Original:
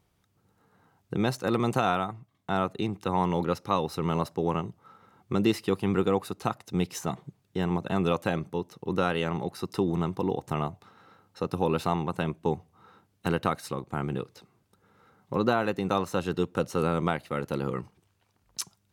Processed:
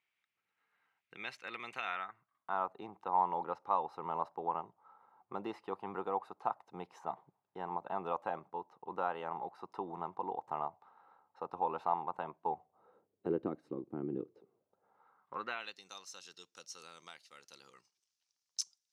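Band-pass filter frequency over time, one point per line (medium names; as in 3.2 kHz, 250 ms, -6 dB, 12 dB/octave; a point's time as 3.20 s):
band-pass filter, Q 3.3
1.81 s 2.3 kHz
2.70 s 880 Hz
12.44 s 880 Hz
13.49 s 320 Hz
14.22 s 320 Hz
15.38 s 1.4 kHz
15.82 s 5.6 kHz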